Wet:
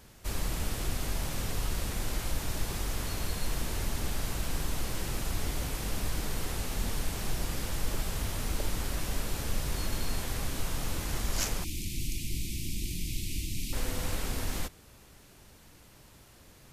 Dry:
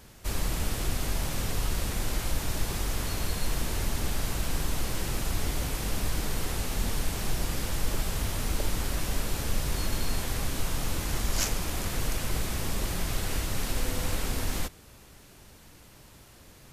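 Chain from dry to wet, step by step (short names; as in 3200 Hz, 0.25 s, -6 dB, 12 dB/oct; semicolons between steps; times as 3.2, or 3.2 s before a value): 11.64–13.73 Chebyshev band-stop 340–2300 Hz, order 4; gain -3 dB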